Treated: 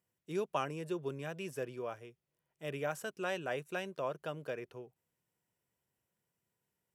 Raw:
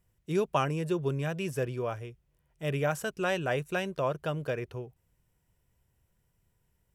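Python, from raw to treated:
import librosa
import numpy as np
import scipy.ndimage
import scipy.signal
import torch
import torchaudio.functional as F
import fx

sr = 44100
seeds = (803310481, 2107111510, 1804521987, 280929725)

y = scipy.signal.sosfilt(scipy.signal.butter(2, 200.0, 'highpass', fs=sr, output='sos'), x)
y = y * 10.0 ** (-7.0 / 20.0)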